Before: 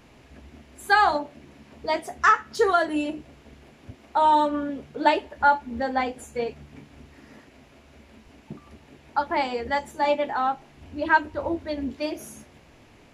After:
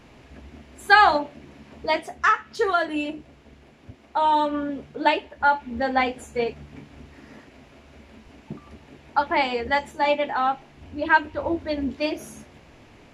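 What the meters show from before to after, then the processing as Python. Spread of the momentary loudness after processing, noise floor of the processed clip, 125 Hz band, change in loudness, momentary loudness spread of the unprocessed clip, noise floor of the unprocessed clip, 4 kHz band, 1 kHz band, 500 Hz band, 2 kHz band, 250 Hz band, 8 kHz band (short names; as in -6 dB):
15 LU, -52 dBFS, +2.0 dB, +1.5 dB, 13 LU, -54 dBFS, +4.0 dB, +1.0 dB, +0.5 dB, +3.0 dB, +1.0 dB, n/a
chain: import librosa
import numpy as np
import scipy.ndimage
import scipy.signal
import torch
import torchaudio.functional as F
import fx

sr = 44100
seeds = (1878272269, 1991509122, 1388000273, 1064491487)

y = fx.dynamic_eq(x, sr, hz=2700.0, q=1.2, threshold_db=-41.0, ratio=4.0, max_db=6)
y = fx.rider(y, sr, range_db=3, speed_s=0.5)
y = fx.high_shelf(y, sr, hz=9000.0, db=-8.5)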